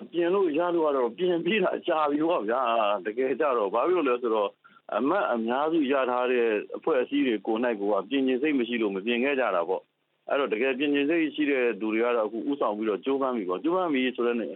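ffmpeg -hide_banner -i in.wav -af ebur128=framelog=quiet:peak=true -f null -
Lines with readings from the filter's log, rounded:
Integrated loudness:
  I:         -26.2 LUFS
  Threshold: -36.2 LUFS
Loudness range:
  LRA:         1.2 LU
  Threshold: -46.3 LUFS
  LRA low:   -26.8 LUFS
  LRA high:  -25.6 LUFS
True peak:
  Peak:      -11.6 dBFS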